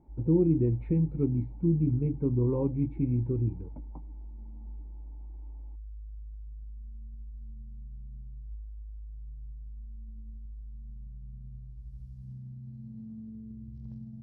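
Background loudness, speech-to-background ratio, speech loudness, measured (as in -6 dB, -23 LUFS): -46.0 LUFS, 18.0 dB, -28.0 LUFS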